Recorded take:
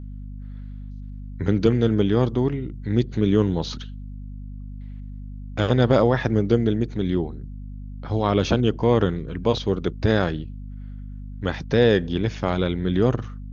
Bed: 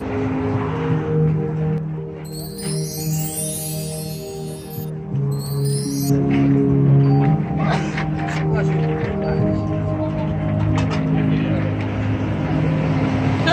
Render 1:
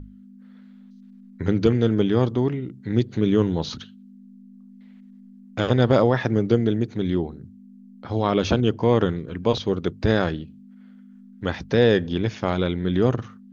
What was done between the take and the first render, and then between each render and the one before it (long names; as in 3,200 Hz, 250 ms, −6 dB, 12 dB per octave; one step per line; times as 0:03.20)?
mains-hum notches 50/100/150 Hz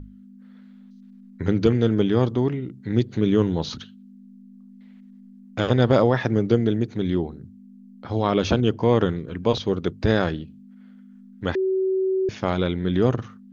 0:11.55–0:12.29: beep over 379 Hz −19 dBFS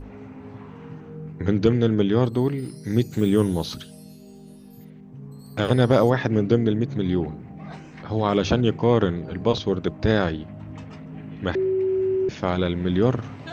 mix in bed −20 dB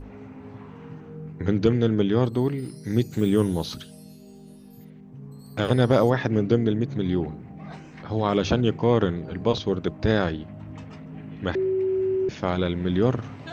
level −1.5 dB